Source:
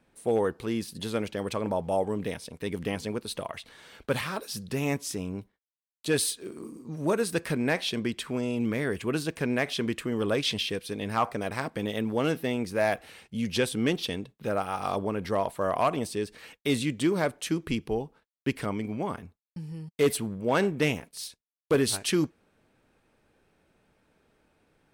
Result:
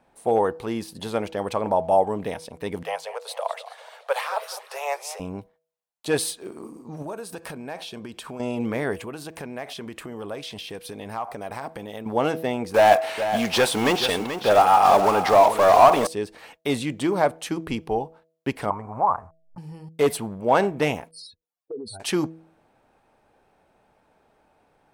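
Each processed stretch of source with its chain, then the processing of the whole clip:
0:02.83–0:05.20: Butterworth high-pass 470 Hz 72 dB per octave + feedback echo with a swinging delay time 210 ms, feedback 50%, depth 175 cents, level −14.5 dB
0:07.02–0:08.40: high-shelf EQ 6,000 Hz +5 dB + notch filter 2,000 Hz, Q 8.5 + downward compressor 12 to 1, threshold −34 dBFS
0:08.95–0:12.06: high-shelf EQ 9,200 Hz +7 dB + downward compressor, threshold −34 dBFS
0:12.74–0:16.07: one scale factor per block 5 bits + mid-hump overdrive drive 20 dB, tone 7,300 Hz, clips at −15 dBFS + single-tap delay 432 ms −9.5 dB
0:18.70–0:19.58: hold until the input has moved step −53.5 dBFS + drawn EQ curve 110 Hz 0 dB, 160 Hz −7 dB, 330 Hz −12 dB, 1,100 Hz +10 dB, 3,300 Hz −27 dB, 8,700 Hz −13 dB, 15,000 Hz −28 dB + background raised ahead of every attack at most 120 dB per second
0:21.11–0:22.00: expanding power law on the bin magnitudes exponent 3.6 + downward compressor 3 to 1, threshold −39 dBFS
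whole clip: parametric band 790 Hz +12 dB 1.1 octaves; hum removal 162 Hz, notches 4

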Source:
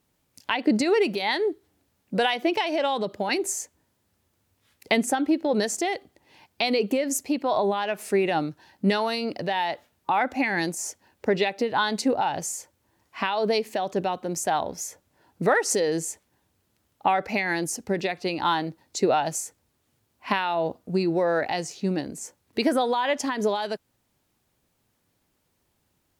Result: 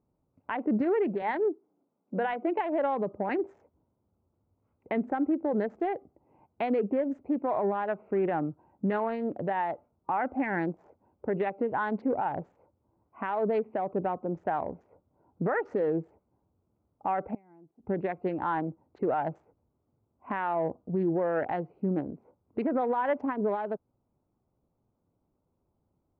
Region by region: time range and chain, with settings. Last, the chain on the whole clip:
0:01.22–0:02.59: high-pass filter 180 Hz 24 dB per octave + mains-hum notches 50/100/150/200/250 Hz
0:17.34–0:17.90: parametric band 520 Hz −10.5 dB 0.25 octaves + gate with flip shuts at −20 dBFS, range −24 dB
whole clip: adaptive Wiener filter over 25 samples; low-pass filter 1,800 Hz 24 dB per octave; brickwall limiter −18.5 dBFS; level −1.5 dB

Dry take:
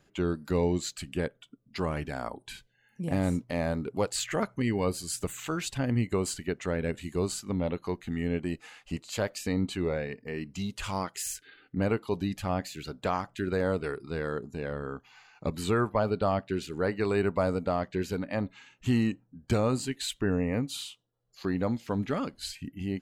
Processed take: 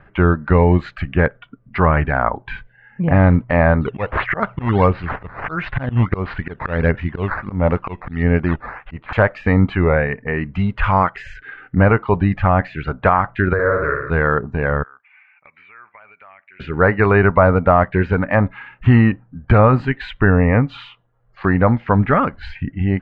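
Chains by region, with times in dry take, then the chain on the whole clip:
0:03.81–0:09.13: low-pass filter 5,200 Hz 24 dB per octave + volume swells 173 ms + sample-and-hold swept by an LFO 10× 1.5 Hz
0:13.53–0:14.10: phaser with its sweep stopped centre 790 Hz, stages 6 + downward compressor 2 to 1, threshold −32 dBFS + flutter between parallel walls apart 10 metres, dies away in 0.81 s
0:14.83–0:16.60: resonant band-pass 2,300 Hz, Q 9 + downward compressor, threshold −57 dBFS
whole clip: low-pass filter 1,800 Hz 24 dB per octave; parametric band 310 Hz −13.5 dB 2.4 octaves; boost into a limiter +25 dB; level −1 dB

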